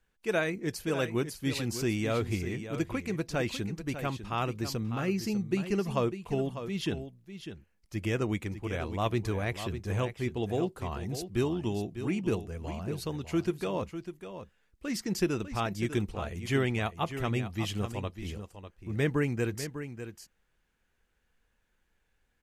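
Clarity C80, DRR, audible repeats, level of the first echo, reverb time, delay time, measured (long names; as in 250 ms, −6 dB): no reverb audible, no reverb audible, 1, −10.5 dB, no reverb audible, 599 ms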